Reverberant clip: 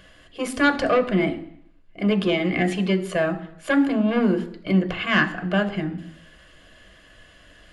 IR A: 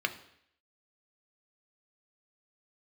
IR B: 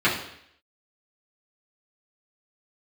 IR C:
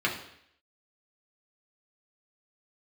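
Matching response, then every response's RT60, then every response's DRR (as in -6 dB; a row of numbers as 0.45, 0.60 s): A; 0.70, 0.70, 0.70 s; 6.0, -10.0, -3.5 dB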